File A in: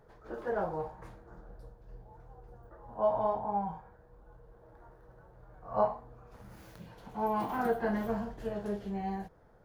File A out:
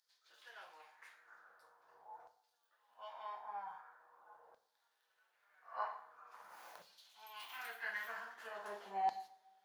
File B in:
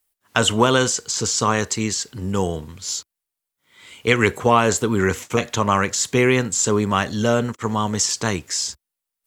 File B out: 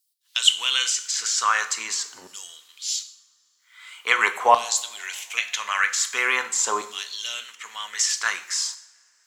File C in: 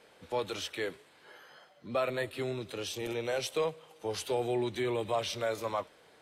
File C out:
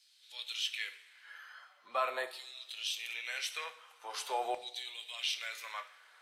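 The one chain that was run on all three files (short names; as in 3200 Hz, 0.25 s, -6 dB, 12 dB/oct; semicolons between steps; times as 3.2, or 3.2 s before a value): LFO high-pass saw down 0.44 Hz 760–4700 Hz; two-slope reverb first 0.61 s, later 3.5 s, from -26 dB, DRR 8.5 dB; gain -2.5 dB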